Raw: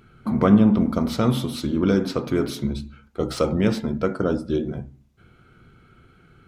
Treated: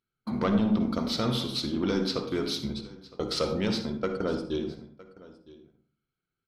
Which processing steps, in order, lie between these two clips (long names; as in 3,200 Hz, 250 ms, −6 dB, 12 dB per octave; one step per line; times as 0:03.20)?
soft clipping −10.5 dBFS, distortion −17 dB
parametric band 4,500 Hz +13.5 dB 1.1 octaves
in parallel at −2 dB: downward compressor, threshold −31 dBFS, peak gain reduction 16 dB
on the sum: bass and treble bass −4 dB, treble −4 dB
noise gate −26 dBFS, range −33 dB
single-tap delay 962 ms −20.5 dB
on a send at −8.5 dB: convolution reverb RT60 0.45 s, pre-delay 48 ms
on the sum: level −7.5 dB